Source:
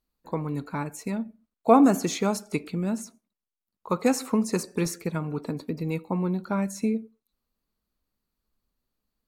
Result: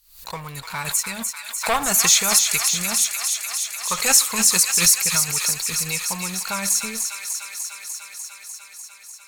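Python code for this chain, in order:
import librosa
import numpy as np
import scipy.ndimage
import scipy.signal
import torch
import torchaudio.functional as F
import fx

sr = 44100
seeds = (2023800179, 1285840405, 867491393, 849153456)

y = fx.high_shelf(x, sr, hz=3100.0, db=11.0)
y = fx.leveller(y, sr, passes=2)
y = fx.tone_stack(y, sr, knobs='10-0-10')
y = fx.echo_wet_highpass(y, sr, ms=298, feedback_pct=78, hz=1500.0, wet_db=-5.5)
y = fx.pre_swell(y, sr, db_per_s=100.0)
y = F.gain(torch.from_numpy(y), 4.0).numpy()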